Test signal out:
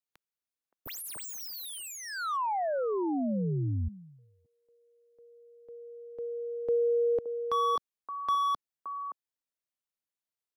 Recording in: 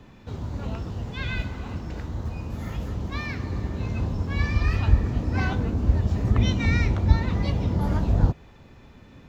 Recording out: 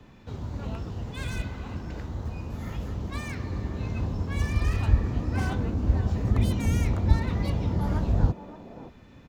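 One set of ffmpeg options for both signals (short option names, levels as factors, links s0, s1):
-filter_complex "[0:a]acrossover=split=210|1300[s0][s1][s2];[s1]aecho=1:1:571:0.376[s3];[s2]aeval=exprs='0.0188*(abs(mod(val(0)/0.0188+3,4)-2)-1)':c=same[s4];[s0][s3][s4]amix=inputs=3:normalize=0,volume=0.75"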